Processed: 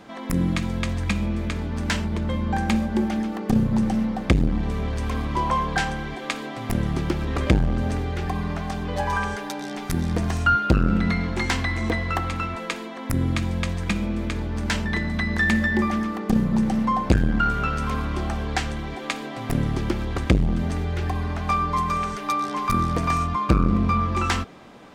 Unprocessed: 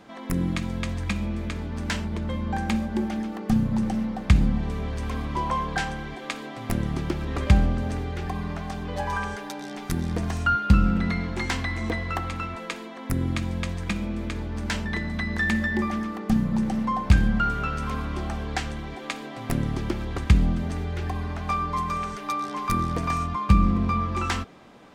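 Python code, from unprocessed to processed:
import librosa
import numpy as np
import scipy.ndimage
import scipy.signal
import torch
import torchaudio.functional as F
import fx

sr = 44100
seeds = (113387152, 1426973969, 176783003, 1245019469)

y = fx.transformer_sat(x, sr, knee_hz=370.0)
y = y * librosa.db_to_amplitude(4.0)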